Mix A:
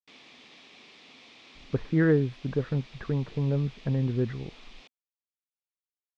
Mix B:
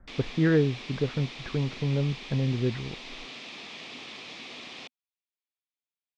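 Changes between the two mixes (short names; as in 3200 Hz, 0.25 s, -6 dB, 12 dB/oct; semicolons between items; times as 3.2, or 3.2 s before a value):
speech: entry -1.55 s; background +10.5 dB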